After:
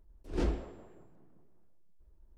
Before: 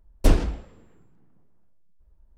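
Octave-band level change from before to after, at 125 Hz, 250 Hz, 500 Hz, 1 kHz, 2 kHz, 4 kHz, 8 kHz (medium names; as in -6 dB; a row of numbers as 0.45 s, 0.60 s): -12.0 dB, -9.0 dB, -8.5 dB, -11.0 dB, -11.5 dB, -13.5 dB, -18.0 dB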